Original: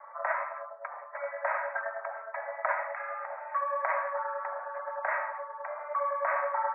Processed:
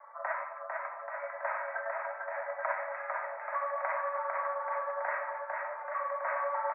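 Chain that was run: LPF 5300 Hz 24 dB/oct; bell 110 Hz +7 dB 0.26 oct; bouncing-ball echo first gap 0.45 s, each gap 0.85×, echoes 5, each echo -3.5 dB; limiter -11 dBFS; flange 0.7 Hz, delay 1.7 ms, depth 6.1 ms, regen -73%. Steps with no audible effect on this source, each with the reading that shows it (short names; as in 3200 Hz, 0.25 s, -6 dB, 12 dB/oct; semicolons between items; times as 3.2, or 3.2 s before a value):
LPF 5300 Hz: input band ends at 2400 Hz; bell 110 Hz: input band starts at 430 Hz; limiter -11 dBFS: input peak -15.5 dBFS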